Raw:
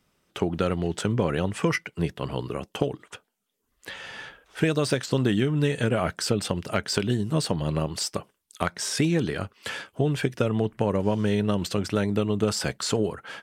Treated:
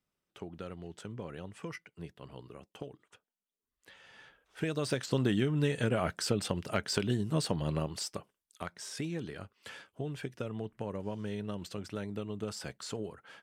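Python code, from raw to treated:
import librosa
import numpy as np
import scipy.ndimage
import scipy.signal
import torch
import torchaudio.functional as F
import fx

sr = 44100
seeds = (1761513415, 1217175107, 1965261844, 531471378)

y = fx.gain(x, sr, db=fx.line((4.03, -18.0), (5.09, -6.0), (7.7, -6.0), (8.64, -14.0)))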